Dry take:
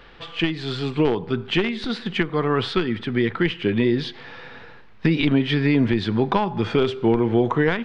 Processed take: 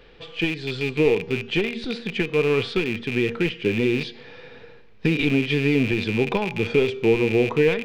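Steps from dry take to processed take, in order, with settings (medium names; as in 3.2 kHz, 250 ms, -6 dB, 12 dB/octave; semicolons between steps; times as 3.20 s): rattle on loud lows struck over -29 dBFS, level -15 dBFS; peaking EQ 1.2 kHz -7 dB 1.4 oct; de-hum 233.2 Hz, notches 30; small resonant body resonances 460/2400 Hz, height 9 dB, ringing for 35 ms; trim -2.5 dB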